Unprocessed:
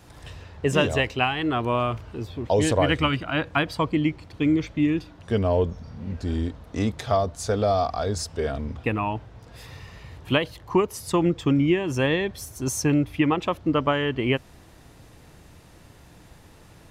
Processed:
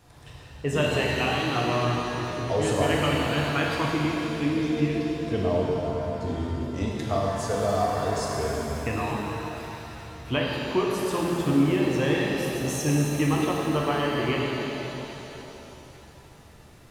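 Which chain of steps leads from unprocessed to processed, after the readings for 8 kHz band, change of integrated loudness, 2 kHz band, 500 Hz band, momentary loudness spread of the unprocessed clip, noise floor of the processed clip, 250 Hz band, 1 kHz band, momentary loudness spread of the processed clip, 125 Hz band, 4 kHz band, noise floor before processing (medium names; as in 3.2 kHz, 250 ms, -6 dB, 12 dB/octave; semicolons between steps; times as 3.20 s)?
-1.0 dB, -1.5 dB, -1.0 dB, -1.0 dB, 12 LU, -49 dBFS, -1.5 dB, -1.0 dB, 11 LU, -0.5 dB, -0.5 dB, -50 dBFS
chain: pitch-shifted reverb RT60 3.3 s, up +7 st, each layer -8 dB, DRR -3 dB; trim -6.5 dB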